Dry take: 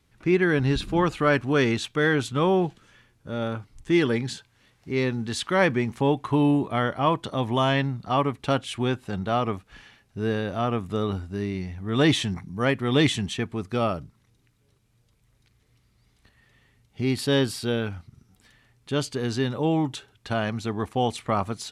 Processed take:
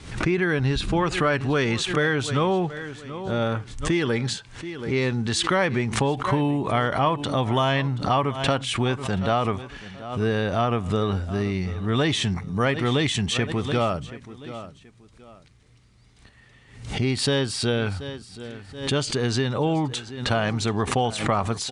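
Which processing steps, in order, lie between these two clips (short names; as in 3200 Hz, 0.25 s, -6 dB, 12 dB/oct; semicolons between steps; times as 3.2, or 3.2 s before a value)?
steep low-pass 9900 Hz 72 dB/oct; feedback echo 0.729 s, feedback 27%, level -18.5 dB; compressor 5:1, threshold -24 dBFS, peak gain reduction 8.5 dB; dynamic EQ 280 Hz, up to -4 dB, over -41 dBFS, Q 1.3; backwards sustainer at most 93 dB/s; gain +6.5 dB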